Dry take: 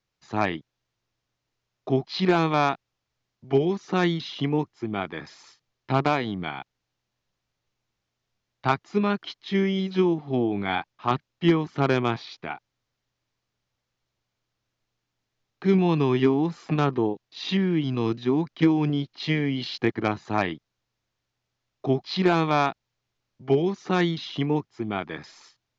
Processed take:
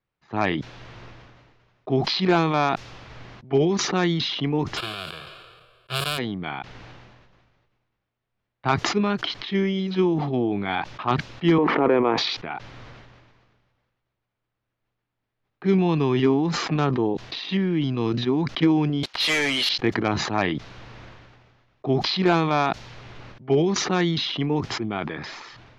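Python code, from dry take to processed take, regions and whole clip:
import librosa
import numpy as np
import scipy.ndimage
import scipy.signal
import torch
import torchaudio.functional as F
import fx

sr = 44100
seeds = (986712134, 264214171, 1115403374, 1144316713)

y = fx.envelope_flatten(x, sr, power=0.1, at=(4.76, 6.17), fade=0.02)
y = fx.fixed_phaser(y, sr, hz=1300.0, stages=8, at=(4.76, 6.17), fade=0.02)
y = fx.sustainer(y, sr, db_per_s=140.0, at=(4.76, 6.17), fade=0.02)
y = fx.chain(y, sr, fx.cabinet(low_hz=280.0, low_slope=12, high_hz=2200.0, hz=(290.0, 480.0, 960.0, 1500.0), db=(5, 9, 4, -5)),
    fx.pre_swell(db_per_s=23.0), at=(11.58, 12.18))
y = fx.chain(y, sr, fx.highpass(hz=770.0, slope=12),
    fx.leveller(passes=5), at=(19.03, 19.69))
y = fx.env_lowpass(y, sr, base_hz=2400.0, full_db=-16.5)
y = fx.sustainer(y, sr, db_per_s=33.0)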